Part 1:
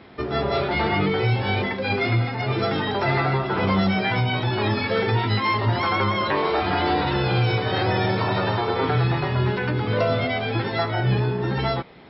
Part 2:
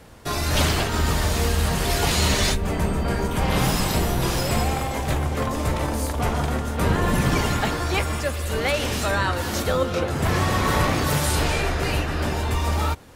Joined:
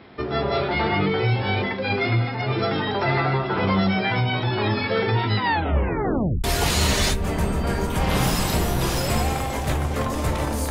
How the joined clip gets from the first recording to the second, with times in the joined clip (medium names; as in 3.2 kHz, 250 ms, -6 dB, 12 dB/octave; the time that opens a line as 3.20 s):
part 1
5.36 s: tape stop 1.08 s
6.44 s: go over to part 2 from 1.85 s